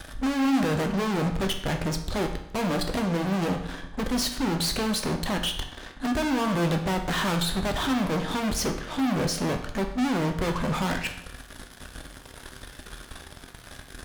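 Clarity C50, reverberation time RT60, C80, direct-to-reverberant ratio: 8.5 dB, 0.80 s, 11.5 dB, 4.0 dB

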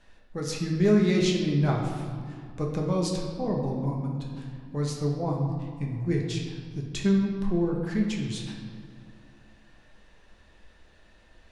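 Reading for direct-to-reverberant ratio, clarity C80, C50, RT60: -1.0 dB, 5.0 dB, 3.0 dB, 2.2 s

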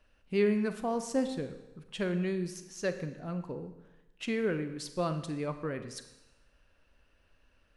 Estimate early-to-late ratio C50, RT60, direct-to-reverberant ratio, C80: 10.5 dB, 1.0 s, 9.0 dB, 12.5 dB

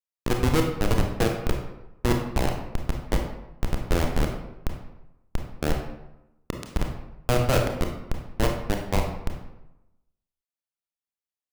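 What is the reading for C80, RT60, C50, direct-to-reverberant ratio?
7.5 dB, 0.90 s, 4.5 dB, 2.0 dB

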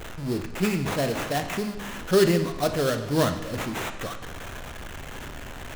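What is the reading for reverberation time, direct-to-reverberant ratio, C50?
0.95 s, 6.5 dB, 9.5 dB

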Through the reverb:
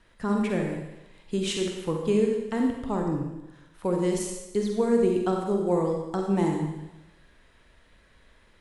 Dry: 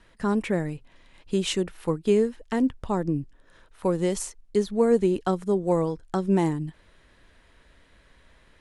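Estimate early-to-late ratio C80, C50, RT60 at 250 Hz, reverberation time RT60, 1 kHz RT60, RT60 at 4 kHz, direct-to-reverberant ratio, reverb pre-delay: 5.0 dB, 2.5 dB, 0.90 s, 0.95 s, 1.0 s, 0.95 s, 1.0 dB, 38 ms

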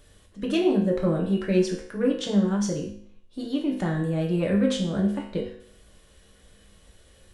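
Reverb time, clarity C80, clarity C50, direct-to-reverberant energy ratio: 0.60 s, 10.0 dB, 6.0 dB, -1.0 dB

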